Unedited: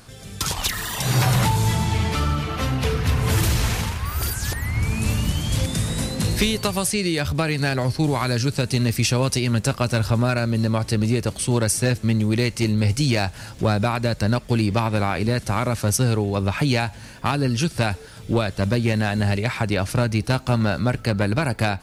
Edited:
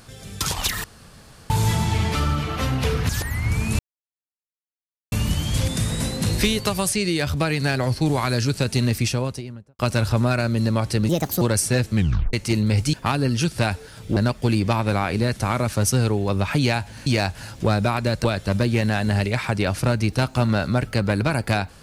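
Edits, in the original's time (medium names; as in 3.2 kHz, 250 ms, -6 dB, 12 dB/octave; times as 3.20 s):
0.84–1.50 s: room tone
3.09–4.40 s: delete
5.10 s: insert silence 1.33 s
8.81–9.77 s: studio fade out
11.07–11.53 s: speed 142%
12.07 s: tape stop 0.38 s
13.05–14.23 s: swap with 17.13–18.36 s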